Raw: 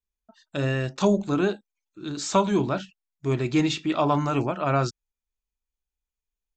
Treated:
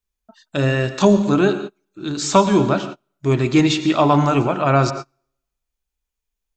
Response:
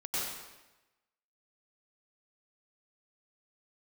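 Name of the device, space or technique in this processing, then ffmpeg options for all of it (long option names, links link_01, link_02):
keyed gated reverb: -filter_complex "[0:a]asplit=3[link_01][link_02][link_03];[1:a]atrim=start_sample=2205[link_04];[link_02][link_04]afir=irnorm=-1:irlink=0[link_05];[link_03]apad=whole_len=289565[link_06];[link_05][link_06]sidechaingate=range=-33dB:threshold=-43dB:ratio=16:detection=peak,volume=-15dB[link_07];[link_01][link_07]amix=inputs=2:normalize=0,volume=6.5dB"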